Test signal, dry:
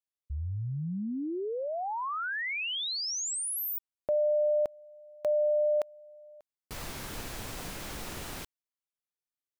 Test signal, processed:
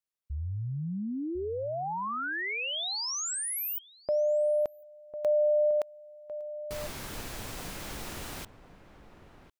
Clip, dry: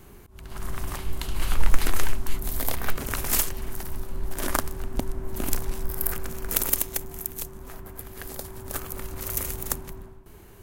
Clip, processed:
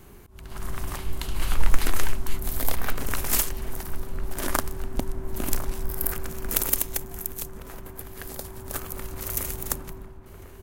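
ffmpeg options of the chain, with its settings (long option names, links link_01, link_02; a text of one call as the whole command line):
ffmpeg -i in.wav -filter_complex "[0:a]asplit=2[link_01][link_02];[link_02]adelay=1050,volume=-12dB,highshelf=frequency=4000:gain=-23.6[link_03];[link_01][link_03]amix=inputs=2:normalize=0" out.wav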